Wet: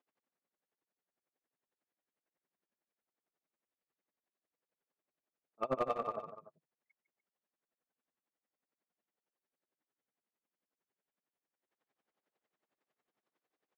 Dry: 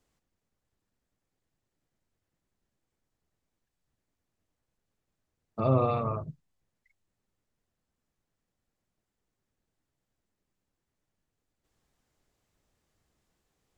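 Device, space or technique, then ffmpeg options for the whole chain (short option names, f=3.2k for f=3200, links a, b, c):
helicopter radio: -af "highpass=370,lowpass=2.7k,lowshelf=f=110:t=q:w=1.5:g=-7.5,aeval=exprs='val(0)*pow(10,-30*(0.5-0.5*cos(2*PI*11*n/s))/20)':c=same,asoftclip=type=hard:threshold=-25dB,aecho=1:1:153|294:0.299|0.158"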